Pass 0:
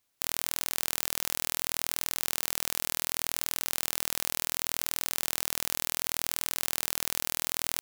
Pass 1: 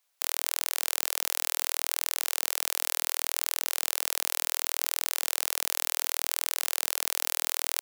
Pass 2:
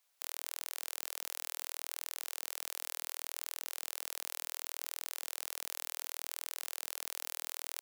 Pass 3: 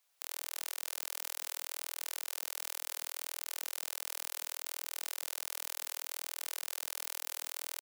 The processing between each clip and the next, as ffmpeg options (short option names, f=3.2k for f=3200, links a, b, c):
-af "highpass=f=510:w=0.5412,highpass=f=510:w=1.3066,volume=2dB"
-af "alimiter=limit=-11.5dB:level=0:latency=1,volume=-1.5dB"
-af "aecho=1:1:95|760:0.531|0.133"